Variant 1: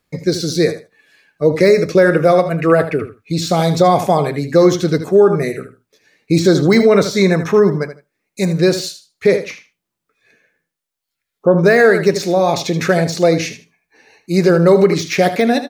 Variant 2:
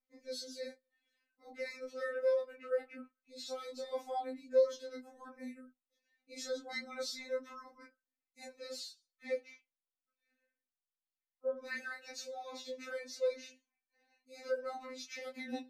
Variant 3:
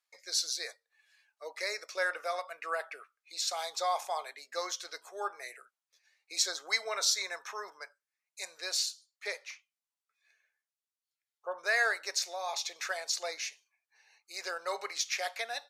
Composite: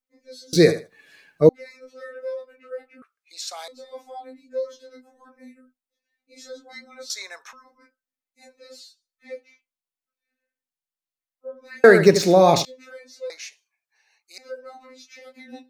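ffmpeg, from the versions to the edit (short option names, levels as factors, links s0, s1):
-filter_complex "[0:a]asplit=2[s0][s1];[2:a]asplit=3[s2][s3][s4];[1:a]asplit=6[s5][s6][s7][s8][s9][s10];[s5]atrim=end=0.532[s11];[s0]atrim=start=0.528:end=1.492[s12];[s6]atrim=start=1.488:end=3.022[s13];[s2]atrim=start=3.018:end=3.682[s14];[s7]atrim=start=3.678:end=7.102[s15];[s3]atrim=start=7.098:end=7.532[s16];[s8]atrim=start=7.528:end=11.842[s17];[s1]atrim=start=11.838:end=12.652[s18];[s9]atrim=start=12.648:end=13.302[s19];[s4]atrim=start=13.298:end=14.382[s20];[s10]atrim=start=14.378[s21];[s11][s12]acrossfade=d=0.004:c1=hsin:c2=hsin[s22];[s22][s13]acrossfade=d=0.004:c1=hsin:c2=hsin[s23];[s23][s14]acrossfade=d=0.004:c1=hsin:c2=hsin[s24];[s24][s15]acrossfade=d=0.004:c1=hsin:c2=hsin[s25];[s25][s16]acrossfade=d=0.004:c1=hsin:c2=hsin[s26];[s26][s17]acrossfade=d=0.004:c1=hsin:c2=hsin[s27];[s27][s18]acrossfade=d=0.004:c1=hsin:c2=hsin[s28];[s28][s19]acrossfade=d=0.004:c1=hsin:c2=hsin[s29];[s29][s20]acrossfade=d=0.004:c1=hsin:c2=hsin[s30];[s30][s21]acrossfade=d=0.004:c1=hsin:c2=hsin"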